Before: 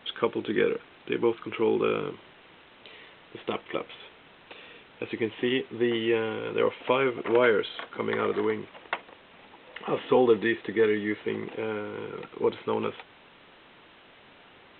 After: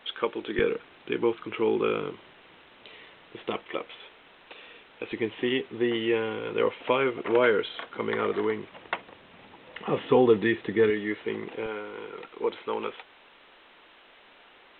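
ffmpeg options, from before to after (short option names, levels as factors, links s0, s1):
-af "asetnsamples=n=441:p=0,asendcmd='0.59 equalizer g -2;3.63 equalizer g -8.5;5.12 equalizer g -1.5;8.72 equalizer g 5.5;10.9 equalizer g -4;11.66 equalizer g -14',equalizer=f=120:t=o:w=2:g=-12"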